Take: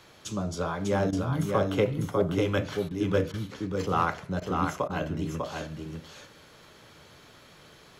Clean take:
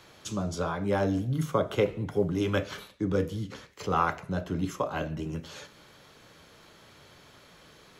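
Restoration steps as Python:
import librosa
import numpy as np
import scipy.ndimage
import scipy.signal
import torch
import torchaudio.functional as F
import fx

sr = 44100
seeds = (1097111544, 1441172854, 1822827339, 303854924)

y = fx.fix_declip(x, sr, threshold_db=-14.0)
y = fx.fix_interpolate(y, sr, at_s=(1.11, 2.89, 3.32, 4.4, 4.88), length_ms=16.0)
y = fx.fix_echo_inverse(y, sr, delay_ms=598, level_db=-4.0)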